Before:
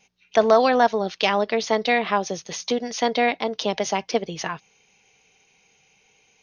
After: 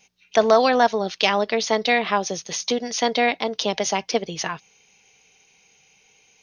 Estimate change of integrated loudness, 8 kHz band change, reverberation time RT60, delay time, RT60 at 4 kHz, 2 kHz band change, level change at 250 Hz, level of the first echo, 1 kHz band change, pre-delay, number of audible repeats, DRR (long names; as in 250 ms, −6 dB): +1.0 dB, can't be measured, no reverb audible, no echo audible, no reverb audible, +1.5 dB, 0.0 dB, no echo audible, +0.5 dB, no reverb audible, no echo audible, no reverb audible